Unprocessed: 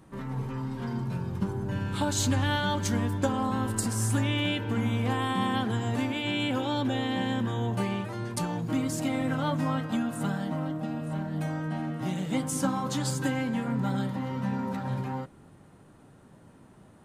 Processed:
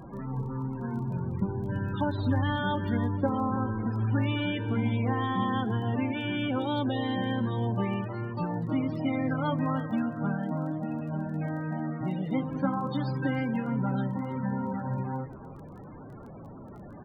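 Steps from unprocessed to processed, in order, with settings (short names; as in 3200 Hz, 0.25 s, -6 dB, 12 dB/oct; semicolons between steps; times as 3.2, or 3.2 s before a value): delta modulation 32 kbps, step -37.5 dBFS; loudest bins only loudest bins 32; on a send: echo 0.319 s -16.5 dB; on the sum: crackle 12/s -45 dBFS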